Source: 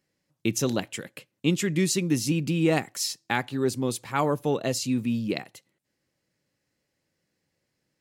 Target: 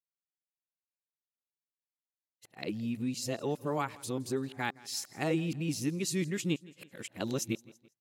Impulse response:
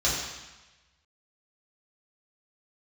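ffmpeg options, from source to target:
-af "areverse,aecho=1:1:166|332|498:0.0794|0.0389|0.0191,agate=range=-33dB:threshold=-47dB:ratio=3:detection=peak,volume=-8dB"

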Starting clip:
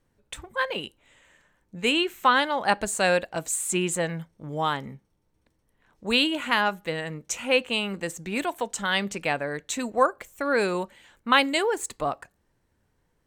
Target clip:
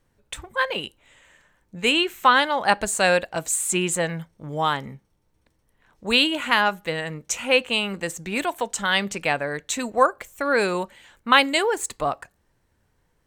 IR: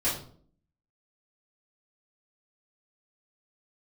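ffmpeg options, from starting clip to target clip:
-af "equalizer=frequency=270:width_type=o:width=1.9:gain=-3,volume=4dB"

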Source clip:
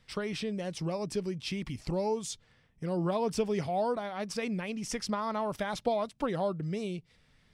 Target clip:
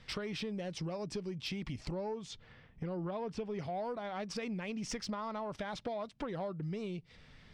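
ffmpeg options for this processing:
ffmpeg -i in.wav -af "asetnsamples=nb_out_samples=441:pad=0,asendcmd='1.94 lowpass f 3300;3.59 lowpass f 5500',lowpass=5800,acompressor=threshold=-44dB:ratio=5,asoftclip=type=tanh:threshold=-36.5dB,volume=7.5dB" out.wav

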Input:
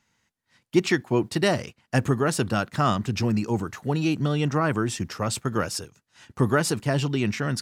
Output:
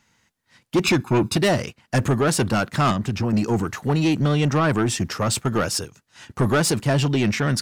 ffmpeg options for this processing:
ffmpeg -i in.wav -filter_complex "[0:a]asettb=1/sr,asplit=3[link_01][link_02][link_03];[link_01]atrim=end=0.844[link_04];[link_02]atrim=start=0.84:end=1.37,asetpts=PTS-STARTPTS,afade=type=in:duration=0.004:curve=qsin,afade=type=out:start_time=0.526:duration=0.004:curve=qsin,aecho=1:1:0.8:0.96,atrim=end_sample=23373[link_05];[link_03]atrim=start=1.366[link_06];[link_04][link_05]acrossfade=duration=0.004:curve1=hsin:curve2=qsin[link_07];[link_07][link_06]acrossfade=duration=0.004:curve1=qsin:curve2=hsin,asettb=1/sr,asplit=3[link_08][link_09][link_10];[link_08]atrim=end=2.914[link_11];[link_09]atrim=start=2.91:end=3.33,asetpts=PTS-STARTPTS,afade=type=in:duration=0.004:curve=qsin,afade=type=out:start_time=0.416:duration=0.004:curve=qsin,acrossover=split=780|1600[link_12][link_13][link_14];[link_12]acompressor=threshold=-26dB:ratio=4[link_15];[link_13]acompressor=threshold=-39dB:ratio=4[link_16];[link_14]acompressor=threshold=-43dB:ratio=4[link_17];[link_15][link_16][link_17]amix=inputs=3:normalize=0[link_18];[link_10]atrim=start=3.326[link_19];[link_11][link_18]acrossfade=duration=0.004:curve1=hsin:curve2=qsin[link_20];[link_20][link_19]acrossfade=duration=0.004:curve1=qsin:curve2=hsin,asoftclip=type=tanh:threshold=-20.5dB,volume=7dB" out.wav

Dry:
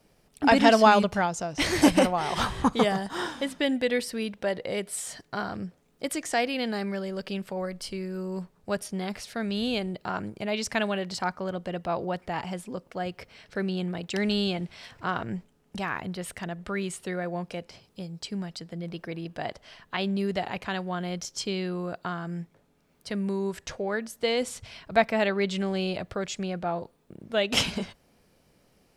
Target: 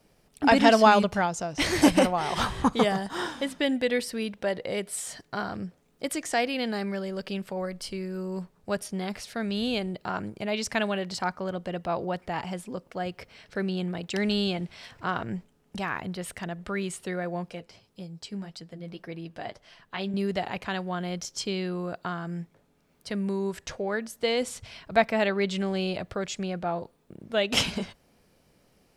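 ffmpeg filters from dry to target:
ffmpeg -i in.wav -filter_complex "[0:a]asettb=1/sr,asplit=3[link_01][link_02][link_03];[link_01]atrim=end=17.504[link_04];[link_02]atrim=start=17.5:end=20.14,asetpts=PTS-STARTPTS,afade=type=in:duration=0.004:curve=qsin,afade=type=out:start_time=2.636:duration=0.004:curve=qsin,flanger=delay=5.6:depth=4.6:regen=-43:speed=1.8:shape=sinusoidal[link_05];[link_03]atrim=start=20.136[link_06];[link_04][link_05]acrossfade=duration=0.004:curve1=hsin:curve2=qsin[link_07];[link_07][link_06]acrossfade=duration=0.004:curve1=qsin:curve2=hsin" out.wav

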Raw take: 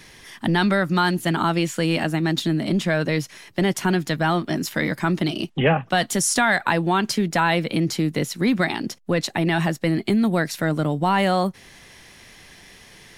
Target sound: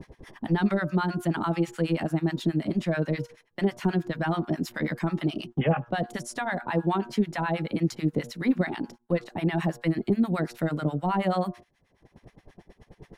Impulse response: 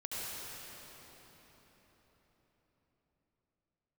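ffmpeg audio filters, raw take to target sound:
-filter_complex "[0:a]bandreject=frequency=118.9:width_type=h:width=4,bandreject=frequency=237.8:width_type=h:width=4,bandreject=frequency=356.7:width_type=h:width=4,bandreject=frequency=475.6:width_type=h:width=4,bandreject=frequency=594.5:width_type=h:width=4,bandreject=frequency=713.4:width_type=h:width=4,bandreject=frequency=832.3:width_type=h:width=4,bandreject=frequency=951.2:width_type=h:width=4,bandreject=frequency=1070.1:width_type=h:width=4,bandreject=frequency=1189:width_type=h:width=4,bandreject=frequency=1307.9:width_type=h:width=4,bandreject=frequency=1426.8:width_type=h:width=4,bandreject=frequency=1545.7:width_type=h:width=4,bandreject=frequency=1664.6:width_type=h:width=4,acrossover=split=1000[link_01][link_02];[link_01]acompressor=mode=upward:threshold=-29dB:ratio=2.5[link_03];[link_02]alimiter=limit=-19.5dB:level=0:latency=1:release=22[link_04];[link_03][link_04]amix=inputs=2:normalize=0,acrossover=split=810[link_05][link_06];[link_05]aeval=exprs='val(0)*(1-1/2+1/2*cos(2*PI*9.3*n/s))':channel_layout=same[link_07];[link_06]aeval=exprs='val(0)*(1-1/2-1/2*cos(2*PI*9.3*n/s))':channel_layout=same[link_08];[link_07][link_08]amix=inputs=2:normalize=0,agate=range=-19dB:threshold=-42dB:ratio=16:detection=peak,highshelf=frequency=2800:gain=-9"

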